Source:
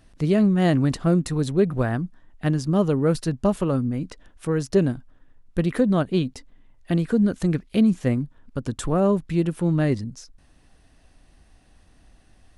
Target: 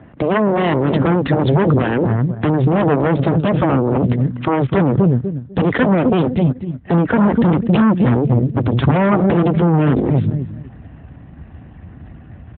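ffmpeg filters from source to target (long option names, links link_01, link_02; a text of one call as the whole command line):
ffmpeg -i in.wav -filter_complex "[0:a]asplit=3[link_01][link_02][link_03];[link_01]afade=type=out:start_time=8.63:duration=0.02[link_04];[link_02]bandreject=frequency=120.8:width_type=h:width=4,bandreject=frequency=241.6:width_type=h:width=4,bandreject=frequency=362.4:width_type=h:width=4,bandreject=frequency=483.2:width_type=h:width=4,bandreject=frequency=604:width_type=h:width=4,bandreject=frequency=724.8:width_type=h:width=4,afade=type=in:start_time=8.63:duration=0.02,afade=type=out:start_time=9.43:duration=0.02[link_05];[link_03]afade=type=in:start_time=9.43:duration=0.02[link_06];[link_04][link_05][link_06]amix=inputs=3:normalize=0,asubboost=boost=3:cutoff=210,acrossover=split=220|2300[link_07][link_08][link_09];[link_09]aeval=exprs='val(0)*gte(abs(val(0)),0.00708)':channel_layout=same[link_10];[link_07][link_08][link_10]amix=inputs=3:normalize=0,asplit=2[link_11][link_12];[link_12]adelay=248,lowpass=frequency=1600:poles=1,volume=-12.5dB,asplit=2[link_13][link_14];[link_14]adelay=248,lowpass=frequency=1600:poles=1,volume=0.24,asplit=2[link_15][link_16];[link_16]adelay=248,lowpass=frequency=1600:poles=1,volume=0.24[link_17];[link_11][link_13][link_15][link_17]amix=inputs=4:normalize=0,asplit=2[link_18][link_19];[link_19]asoftclip=type=tanh:threshold=-21.5dB,volume=-4dB[link_20];[link_18][link_20]amix=inputs=2:normalize=0,aeval=exprs='0.531*(cos(1*acos(clip(val(0)/0.531,-1,1)))-cos(1*PI/2))+0.0531*(cos(3*acos(clip(val(0)/0.531,-1,1)))-cos(3*PI/2))+0.0944*(cos(4*acos(clip(val(0)/0.531,-1,1)))-cos(4*PI/2))+0.168*(cos(7*acos(clip(val(0)/0.531,-1,1)))-cos(7*PI/2))+0.0422*(cos(8*acos(clip(val(0)/0.531,-1,1)))-cos(8*PI/2))':channel_layout=same,alimiter=level_in=15dB:limit=-1dB:release=50:level=0:latency=1,volume=-4dB" -ar 8000 -c:a libopencore_amrnb -b:a 12200 out.amr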